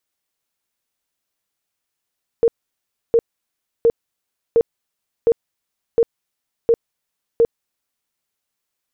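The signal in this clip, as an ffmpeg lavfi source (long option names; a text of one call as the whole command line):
ffmpeg -f lavfi -i "aevalsrc='0.335*sin(2*PI*463*mod(t,0.71))*lt(mod(t,0.71),23/463)':duration=5.68:sample_rate=44100" out.wav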